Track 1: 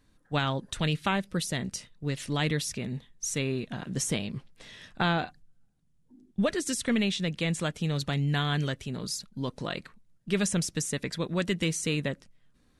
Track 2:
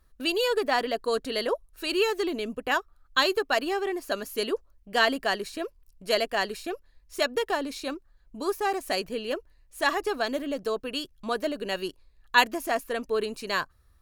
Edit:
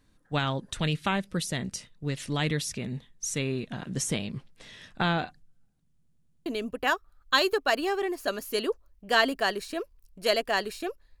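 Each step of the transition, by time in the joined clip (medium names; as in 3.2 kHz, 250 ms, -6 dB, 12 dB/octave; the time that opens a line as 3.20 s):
track 1
5.96 s: stutter in place 0.10 s, 5 plays
6.46 s: go over to track 2 from 2.30 s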